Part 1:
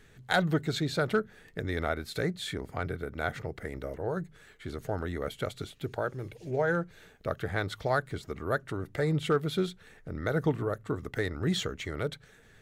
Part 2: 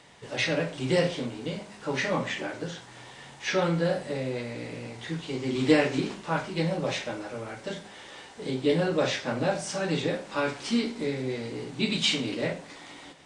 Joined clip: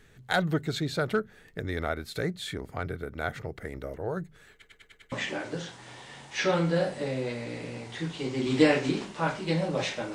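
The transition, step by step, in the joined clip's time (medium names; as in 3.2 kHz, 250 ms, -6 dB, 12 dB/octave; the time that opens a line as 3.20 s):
part 1
4.52 s: stutter in place 0.10 s, 6 plays
5.12 s: go over to part 2 from 2.21 s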